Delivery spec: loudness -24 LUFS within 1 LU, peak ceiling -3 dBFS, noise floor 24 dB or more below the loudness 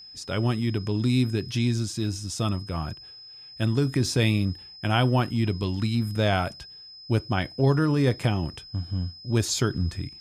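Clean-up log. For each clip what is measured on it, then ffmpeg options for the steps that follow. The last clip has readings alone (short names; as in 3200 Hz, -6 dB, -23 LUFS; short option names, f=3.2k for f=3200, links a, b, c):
steady tone 5100 Hz; tone level -43 dBFS; loudness -26.0 LUFS; peak -8.5 dBFS; loudness target -24.0 LUFS
-> -af "bandreject=f=5.1k:w=30"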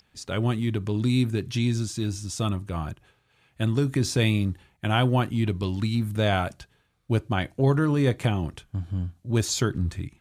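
steady tone none; loudness -26.0 LUFS; peak -8.5 dBFS; loudness target -24.0 LUFS
-> -af "volume=2dB"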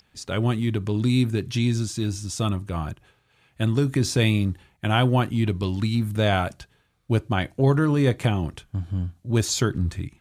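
loudness -24.0 LUFS; peak -6.5 dBFS; noise floor -65 dBFS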